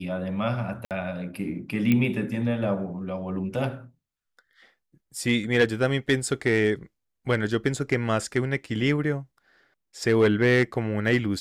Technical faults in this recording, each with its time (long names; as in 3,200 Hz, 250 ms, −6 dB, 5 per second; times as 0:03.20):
0:00.85–0:00.91: drop-out 58 ms
0:01.92: click −11 dBFS